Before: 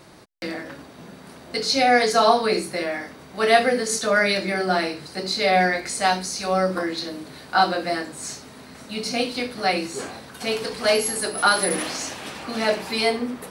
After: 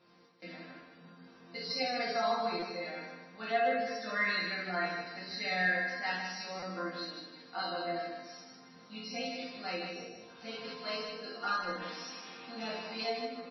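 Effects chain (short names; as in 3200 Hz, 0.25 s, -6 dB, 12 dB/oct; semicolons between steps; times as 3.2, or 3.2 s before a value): tracing distortion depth 0.048 ms; 3.88–6.2 bell 1800 Hz +11 dB 0.33 oct; 9.91–10.2 spectral gain 780–5400 Hz -21 dB; resonator bank F3 sus4, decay 0.29 s; spectral gate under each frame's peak -30 dB strong; HPF 73 Hz 12 dB/oct; reverb, pre-delay 3 ms, DRR 0 dB; flange 0.26 Hz, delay 8.1 ms, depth 9.3 ms, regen -79%; feedback echo 0.156 s, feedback 39%, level -6 dB; stuck buffer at 2.59/6.59, samples 256, times 5; gain +3.5 dB; MP3 24 kbps 22050 Hz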